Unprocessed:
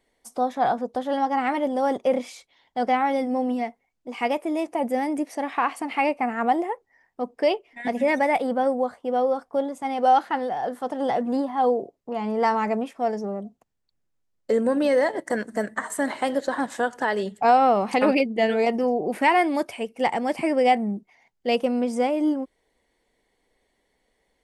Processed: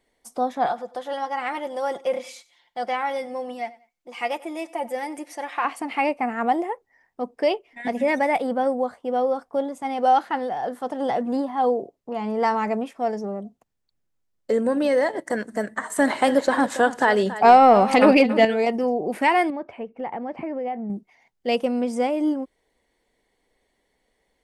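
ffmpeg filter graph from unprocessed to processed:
-filter_complex "[0:a]asettb=1/sr,asplit=3[s0][s1][s2];[s0]atrim=end=0.664[s3];[s1]atrim=start=0.66:end=5.65,asetpts=PTS-STARTPTS,afade=t=in:d=0.004:c=qsin,afade=t=out:st=4.986:d=0.004:c=qsin,lowshelf=f=500:g=-11.5,aecho=1:1:5.7:0.47,atrim=end_sample=220059,aecho=1:1:95|190:0.1|0.028,atrim=end_sample=220059[s4];[s2]atrim=start=5.646[s5];[s3][s4]acrossfade=d=0.004:c1=hsin:c2=qsin[s6];[s6][s5]acrossfade=d=0.004:c1=qsin:c2=hsin,asettb=1/sr,asplit=3[s7][s8][s9];[s7]atrim=end=15.964[s10];[s8]atrim=start=15.96:end=18.45,asetpts=PTS-STARTPTS,afade=t=in:d=0.004:c=qsin,afade=t=out:st=2.486:d=0.004:c=qsin,acontrast=48,aecho=1:1:279:0.2,atrim=end_sample=109809[s11];[s9]atrim=start=18.446[s12];[s10][s11]acrossfade=d=0.004:c1=hsin:c2=qsin[s13];[s13][s12]acrossfade=d=0.004:c1=qsin:c2=hsin,asettb=1/sr,asplit=3[s14][s15][s16];[s14]atrim=end=19.504[s17];[s15]atrim=start=19.5:end=20.9,asetpts=PTS-STARTPTS,afade=t=in:d=0.004:c=qsin,afade=t=out:st=1.396:d=0.004:c=qsin,lowpass=1500,acompressor=threshold=0.0398:ratio=3:attack=3.2:release=140:knee=1:detection=peak[s18];[s16]atrim=start=20.896[s19];[s17][s18]acrossfade=d=0.004:c1=hsin:c2=qsin[s20];[s20][s19]acrossfade=d=0.004:c1=qsin:c2=hsin"

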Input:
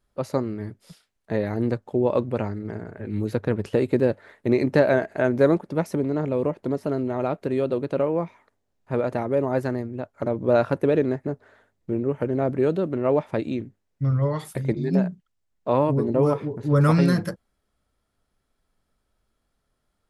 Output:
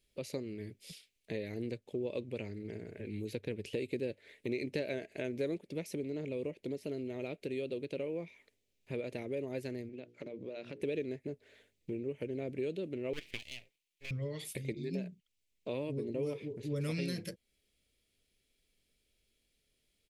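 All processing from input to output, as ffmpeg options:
-filter_complex "[0:a]asettb=1/sr,asplit=3[s0][s1][s2];[s0]atrim=end=9.894[s3];[s1]atrim=start=9.89:end=10.82,asetpts=PTS-STARTPTS,afade=t=in:d=0.004:c=qsin,afade=t=out:st=0.926:d=0.004:c=qsin,bandreject=f=60:t=h:w=6,bandreject=f=120:t=h:w=6,bandreject=f=180:t=h:w=6,bandreject=f=240:t=h:w=6,bandreject=f=300:t=h:w=6,bandreject=f=360:t=h:w=6,bandreject=f=420:t=h:w=6,bandreject=f=480:t=h:w=6,acompressor=threshold=0.0251:ratio=4:attack=3.2:release=140:knee=1:detection=peak,highpass=150,lowpass=5700[s4];[s2]atrim=start=10.816[s5];[s3][s4]acrossfade=d=0.004:c1=hsin:c2=qsin[s6];[s6][s5]acrossfade=d=0.004:c1=qsin:c2=hsin,asettb=1/sr,asplit=3[s7][s8][s9];[s7]atrim=end=13.134[s10];[s8]atrim=start=13.13:end=14.11,asetpts=PTS-STARTPTS,afade=t=in:d=0.004:c=qsin,afade=t=out:st=0.976:d=0.004:c=qsin,highpass=710,equalizer=f=1100:t=o:w=0.85:g=6.5,aeval=exprs='abs(val(0))':c=same[s11];[s9]atrim=start=14.106[s12];[s10][s11]acrossfade=d=0.004:c1=hsin:c2=qsin[s13];[s13][s12]acrossfade=d=0.004:c1=qsin:c2=hsin,firequalizer=gain_entry='entry(180,0);entry(440,5);entry(810,-10);entry(1300,-11);entry(2300,14);entry(5200,10)':delay=0.05:min_phase=1,acompressor=threshold=0.0158:ratio=2,volume=0.447"

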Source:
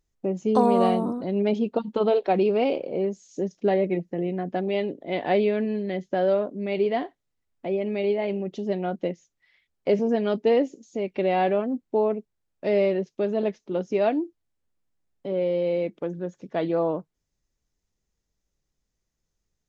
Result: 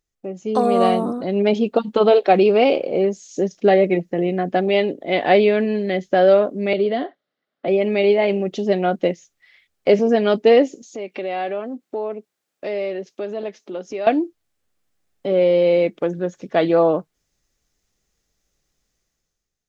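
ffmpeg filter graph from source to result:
-filter_complex "[0:a]asettb=1/sr,asplit=3[s0][s1][s2];[s0]atrim=end=6.734[s3];[s1]atrim=start=6.73:end=7.68,asetpts=PTS-STARTPTS,afade=t=in:d=0.004:c=qsin,afade=t=out:st=0.946:d=0.004:c=qsin,acrossover=split=350|3000[s4][s5][s6];[s5]acompressor=threshold=0.0141:ratio=3:attack=3.2:release=140:knee=2.83:detection=peak[s7];[s4][s7][s6]amix=inputs=3:normalize=0,highpass=f=170:w=0.5412,highpass=f=170:w=1.3066,equalizer=f=590:t=q:w=4:g=7,equalizer=f=910:t=q:w=4:g=-3,equalizer=f=1400:t=q:w=4:g=3,equalizer=f=2500:t=q:w=4:g=-8,lowpass=f=4000:w=0.5412,lowpass=f=4000:w=1.3066[s8];[s2]atrim=start=7.676[s9];[s3][s8]acrossfade=d=0.004:c1=hsin:c2=qsin[s10];[s10][s9]acrossfade=d=0.004:c1=qsin:c2=hsin,asettb=1/sr,asplit=3[s11][s12][s13];[s11]atrim=end=10.824[s14];[s12]atrim=start=10.82:end=14.07,asetpts=PTS-STARTPTS,afade=t=in:d=0.004:c=qsin,afade=t=out:st=3.246:d=0.004:c=qsin,highpass=220,acompressor=threshold=0.01:ratio=2:attack=3.2:release=140:knee=1:detection=peak[s15];[s13]atrim=start=14.066[s16];[s14][s15]acrossfade=d=0.004:c1=hsin:c2=qsin[s17];[s17][s16]acrossfade=d=0.004:c1=qsin:c2=hsin,lowshelf=f=380:g=-7.5,bandreject=f=950:w=8.9,dynaudnorm=f=110:g=11:m=3.98"

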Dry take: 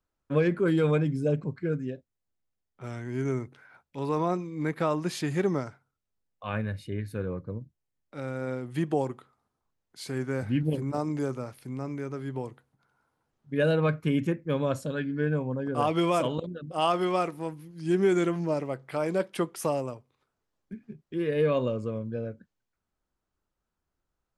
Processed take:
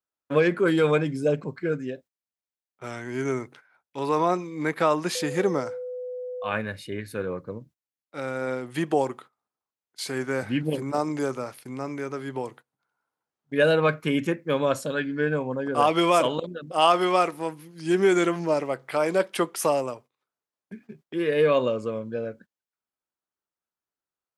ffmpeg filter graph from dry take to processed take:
-filter_complex "[0:a]asettb=1/sr,asplit=3[s0][s1][s2];[s0]atrim=end=5.154[s3];[s1]atrim=start=5.15:end=6.52,asetpts=PTS-STARTPTS,afade=t=in:d=0.004:c=qsin,afade=t=out:st=1.366:d=0.004:c=qsin,equalizer=f=2200:t=o:w=2:g=-3.5,aeval=exprs='val(0)+0.0158*sin(2*PI*500*n/s)':c=same[s4];[s2]atrim=start=6.516[s5];[s3][s4]acrossfade=d=0.004:c1=hsin:c2=qsin[s6];[s6][s5]acrossfade=d=0.004:c1=qsin:c2=hsin,agate=range=0.178:threshold=0.00316:ratio=16:detection=peak,highpass=f=510:p=1,volume=2.51"

